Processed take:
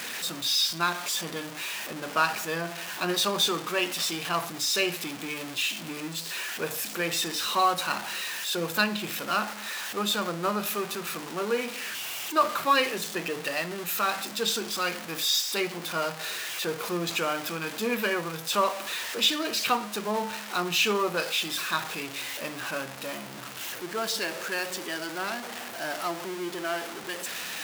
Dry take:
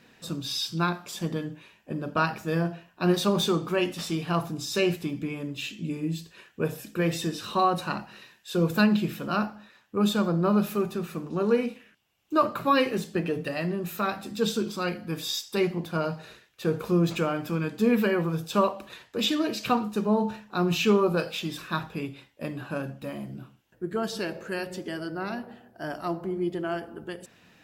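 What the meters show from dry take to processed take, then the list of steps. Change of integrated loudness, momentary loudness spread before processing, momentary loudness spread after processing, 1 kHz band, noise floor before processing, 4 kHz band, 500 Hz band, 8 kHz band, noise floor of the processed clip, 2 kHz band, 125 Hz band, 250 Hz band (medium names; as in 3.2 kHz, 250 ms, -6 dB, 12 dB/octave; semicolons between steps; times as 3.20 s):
-0.5 dB, 13 LU, 9 LU, +1.5 dB, -60 dBFS, +6.5 dB, -3.5 dB, +9.0 dB, -39 dBFS, +4.5 dB, -11.5 dB, -8.5 dB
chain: jump at every zero crossing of -31 dBFS; high-pass 1.2 kHz 6 dB/octave; trim +3.5 dB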